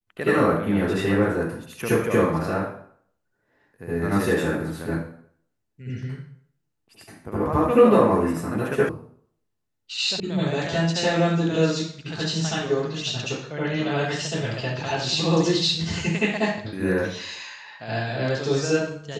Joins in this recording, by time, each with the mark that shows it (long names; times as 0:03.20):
0:08.89: cut off before it has died away
0:10.20: cut off before it has died away